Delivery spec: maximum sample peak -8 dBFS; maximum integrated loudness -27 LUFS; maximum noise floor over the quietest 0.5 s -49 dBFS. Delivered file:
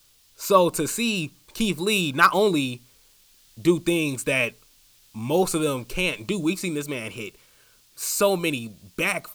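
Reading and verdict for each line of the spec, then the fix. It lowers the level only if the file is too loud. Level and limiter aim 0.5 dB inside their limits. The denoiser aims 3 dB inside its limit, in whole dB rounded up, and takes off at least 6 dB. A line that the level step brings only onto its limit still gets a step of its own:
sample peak -5.5 dBFS: fail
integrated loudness -23.5 LUFS: fail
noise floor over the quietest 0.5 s -57 dBFS: pass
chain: trim -4 dB

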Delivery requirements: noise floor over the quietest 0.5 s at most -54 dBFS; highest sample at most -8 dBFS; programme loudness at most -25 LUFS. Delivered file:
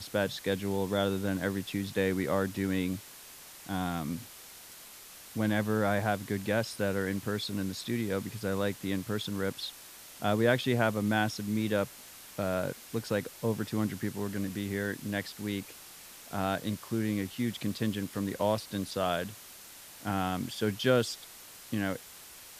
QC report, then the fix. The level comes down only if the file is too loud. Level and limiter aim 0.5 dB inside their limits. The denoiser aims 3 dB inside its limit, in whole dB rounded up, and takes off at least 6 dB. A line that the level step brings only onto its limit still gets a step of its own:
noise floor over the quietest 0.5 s -50 dBFS: fail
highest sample -11.5 dBFS: pass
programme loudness -32.0 LUFS: pass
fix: noise reduction 7 dB, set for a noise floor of -50 dBFS

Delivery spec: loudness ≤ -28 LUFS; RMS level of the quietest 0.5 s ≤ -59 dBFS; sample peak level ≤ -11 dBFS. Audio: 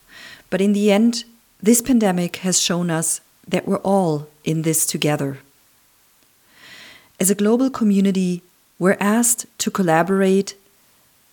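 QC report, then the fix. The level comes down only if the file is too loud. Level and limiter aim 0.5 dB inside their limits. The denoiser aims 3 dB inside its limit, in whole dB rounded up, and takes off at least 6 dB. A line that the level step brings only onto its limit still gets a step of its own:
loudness -18.5 LUFS: fail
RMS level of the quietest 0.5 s -57 dBFS: fail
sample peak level -3.5 dBFS: fail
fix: trim -10 dB

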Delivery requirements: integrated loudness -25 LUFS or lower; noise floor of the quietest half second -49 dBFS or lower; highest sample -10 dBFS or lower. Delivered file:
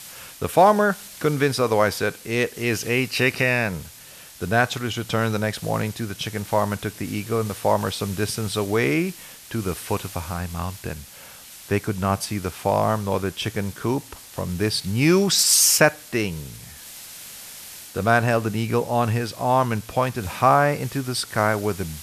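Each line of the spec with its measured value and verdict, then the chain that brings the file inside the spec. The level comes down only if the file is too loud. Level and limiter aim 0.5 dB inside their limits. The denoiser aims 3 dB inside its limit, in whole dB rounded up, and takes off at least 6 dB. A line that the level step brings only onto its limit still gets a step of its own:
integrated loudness -22.0 LUFS: fail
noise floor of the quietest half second -44 dBFS: fail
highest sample -2.5 dBFS: fail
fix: noise reduction 6 dB, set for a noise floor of -44 dBFS; trim -3.5 dB; peak limiter -10.5 dBFS

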